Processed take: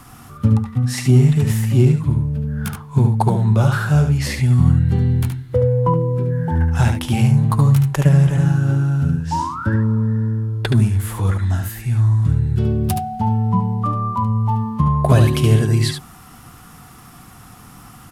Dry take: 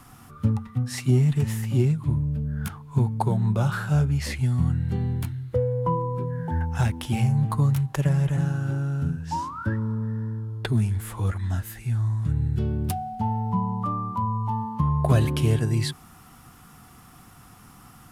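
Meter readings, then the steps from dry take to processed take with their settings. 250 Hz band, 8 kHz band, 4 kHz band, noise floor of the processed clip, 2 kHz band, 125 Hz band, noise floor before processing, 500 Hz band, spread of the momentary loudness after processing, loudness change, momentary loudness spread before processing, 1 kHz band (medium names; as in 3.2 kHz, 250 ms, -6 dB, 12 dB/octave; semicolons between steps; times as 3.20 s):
+8.0 dB, +7.5 dB, +7.5 dB, -42 dBFS, +7.5 dB, +8.5 dB, -50 dBFS, +7.5 dB, 7 LU, +8.0 dB, 7 LU, +6.0 dB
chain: delay 73 ms -6 dB; trim +6.5 dB; SBC 128 kbps 44.1 kHz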